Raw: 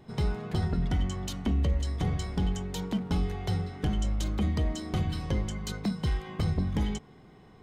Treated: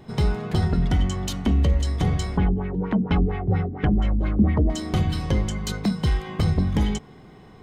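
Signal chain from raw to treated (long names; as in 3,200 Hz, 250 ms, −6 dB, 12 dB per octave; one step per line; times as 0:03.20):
0:02.37–0:04.70: auto-filter low-pass sine 4.3 Hz 250–2,500 Hz
level +7 dB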